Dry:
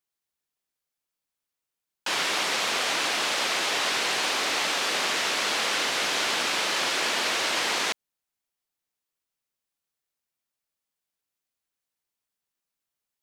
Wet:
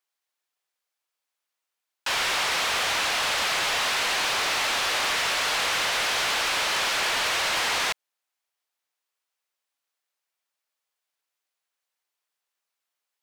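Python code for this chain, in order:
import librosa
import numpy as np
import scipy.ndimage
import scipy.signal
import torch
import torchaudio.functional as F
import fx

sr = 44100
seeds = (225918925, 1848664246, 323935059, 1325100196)

y = scipy.signal.sosfilt(scipy.signal.butter(2, 570.0, 'highpass', fs=sr, output='sos'), x)
y = fx.high_shelf(y, sr, hz=5900.0, db=-6.5)
y = np.clip(10.0 ** (28.0 / 20.0) * y, -1.0, 1.0) / 10.0 ** (28.0 / 20.0)
y = F.gain(torch.from_numpy(y), 5.5).numpy()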